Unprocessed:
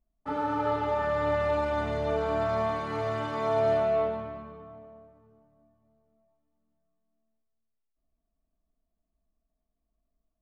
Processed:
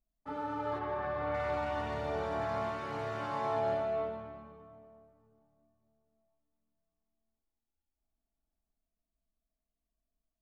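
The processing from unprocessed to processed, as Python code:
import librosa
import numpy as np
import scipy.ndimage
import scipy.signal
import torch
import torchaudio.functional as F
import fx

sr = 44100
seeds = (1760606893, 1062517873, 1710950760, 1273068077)

y = fx.echo_pitch(x, sr, ms=511, semitones=4, count=3, db_per_echo=-6.0)
y = fx.air_absorb(y, sr, metres=180.0, at=(0.78, 1.33), fade=0.02)
y = F.gain(torch.from_numpy(y), -8.0).numpy()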